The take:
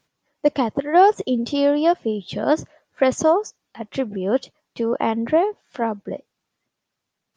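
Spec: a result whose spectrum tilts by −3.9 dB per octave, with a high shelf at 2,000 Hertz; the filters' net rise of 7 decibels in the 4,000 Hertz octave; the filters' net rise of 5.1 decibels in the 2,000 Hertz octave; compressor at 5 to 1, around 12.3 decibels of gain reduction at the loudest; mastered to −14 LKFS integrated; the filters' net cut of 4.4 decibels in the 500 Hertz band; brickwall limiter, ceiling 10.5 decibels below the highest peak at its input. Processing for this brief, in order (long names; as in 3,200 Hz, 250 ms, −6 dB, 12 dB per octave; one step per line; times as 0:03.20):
parametric band 500 Hz −6.5 dB
high-shelf EQ 2,000 Hz +3 dB
parametric band 2,000 Hz +4 dB
parametric band 4,000 Hz +5 dB
downward compressor 5 to 1, threshold −25 dBFS
level +19 dB
brickwall limiter −3.5 dBFS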